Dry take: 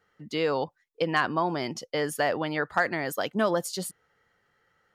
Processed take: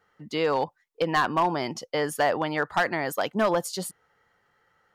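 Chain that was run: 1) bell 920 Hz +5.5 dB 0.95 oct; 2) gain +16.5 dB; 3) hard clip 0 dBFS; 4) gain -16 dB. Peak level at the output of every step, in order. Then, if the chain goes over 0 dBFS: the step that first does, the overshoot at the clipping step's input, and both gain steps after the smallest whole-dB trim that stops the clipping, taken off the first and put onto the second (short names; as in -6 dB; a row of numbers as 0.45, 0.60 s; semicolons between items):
-7.5, +9.0, 0.0, -16.0 dBFS; step 2, 9.0 dB; step 2 +7.5 dB, step 4 -7 dB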